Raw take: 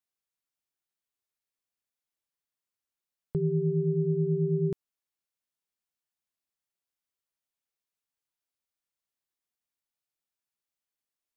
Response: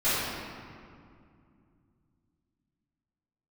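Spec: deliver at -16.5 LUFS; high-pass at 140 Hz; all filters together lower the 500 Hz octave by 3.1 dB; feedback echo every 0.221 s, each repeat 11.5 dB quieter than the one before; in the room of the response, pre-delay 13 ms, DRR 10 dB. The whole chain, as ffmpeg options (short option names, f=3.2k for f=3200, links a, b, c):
-filter_complex "[0:a]highpass=140,equalizer=f=500:t=o:g=-4.5,aecho=1:1:221|442|663:0.266|0.0718|0.0194,asplit=2[a][b];[1:a]atrim=start_sample=2205,adelay=13[c];[b][c]afir=irnorm=-1:irlink=0,volume=-24.5dB[d];[a][d]amix=inputs=2:normalize=0,volume=16dB"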